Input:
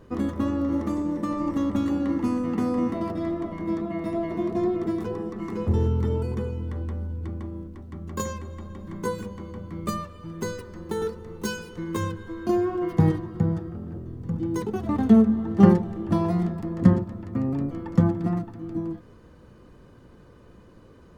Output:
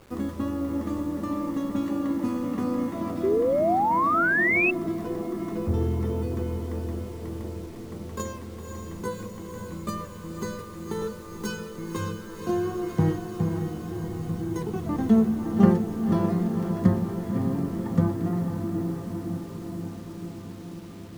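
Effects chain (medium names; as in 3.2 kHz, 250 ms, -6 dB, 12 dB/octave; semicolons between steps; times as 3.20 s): echo that smears into a reverb 539 ms, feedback 73%, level -7 dB; painted sound rise, 3.23–4.71 s, 370–2700 Hz -19 dBFS; word length cut 8-bit, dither none; trim -3.5 dB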